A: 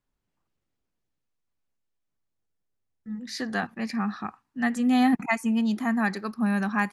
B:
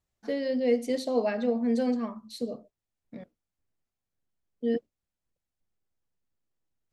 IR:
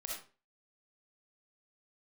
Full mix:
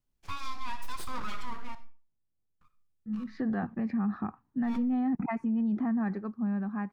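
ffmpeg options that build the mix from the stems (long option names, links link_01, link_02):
-filter_complex "[0:a]lowpass=1400,lowshelf=frequency=370:gain=11,volume=-2.5dB,afade=type=in:start_time=3.06:duration=0.39:silence=0.446684,afade=type=out:start_time=5.82:duration=0.55:silence=0.281838[link_01];[1:a]highpass=frequency=520:width=0.5412,highpass=frequency=520:width=1.3066,aeval=exprs='abs(val(0))':channel_layout=same,volume=-1.5dB,asplit=3[link_02][link_03][link_04];[link_02]atrim=end=1.75,asetpts=PTS-STARTPTS,afade=type=out:start_time=1.746:duration=0.004:curve=hsin[link_05];[link_03]atrim=start=1.75:end=2.61,asetpts=PTS-STARTPTS,volume=0[link_06];[link_04]atrim=start=2.61,asetpts=PTS-STARTPTS,afade=type=in:duration=0.004:curve=hsin[link_07];[link_05][link_06][link_07]concat=n=3:v=0:a=1,asplit=2[link_08][link_09];[link_09]volume=-8dB[link_10];[2:a]atrim=start_sample=2205[link_11];[link_10][link_11]afir=irnorm=-1:irlink=0[link_12];[link_01][link_08][link_12]amix=inputs=3:normalize=0,alimiter=limit=-24dB:level=0:latency=1:release=51"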